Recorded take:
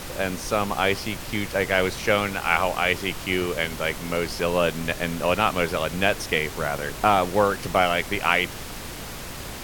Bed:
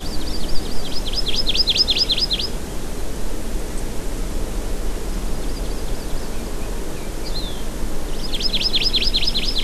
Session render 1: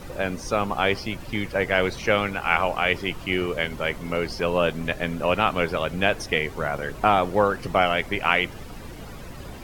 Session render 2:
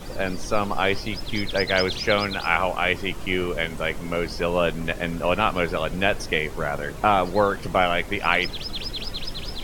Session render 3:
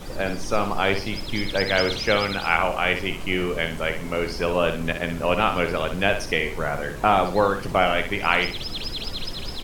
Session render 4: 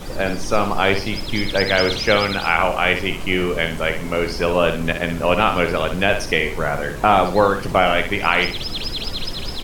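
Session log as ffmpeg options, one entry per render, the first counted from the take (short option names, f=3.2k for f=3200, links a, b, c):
-af "afftdn=nr=12:nf=-36"
-filter_complex "[1:a]volume=-13.5dB[a];[0:a][a]amix=inputs=2:normalize=0"
-af "aecho=1:1:61|122|183|244:0.376|0.113|0.0338|0.0101"
-af "volume=4.5dB,alimiter=limit=-1dB:level=0:latency=1"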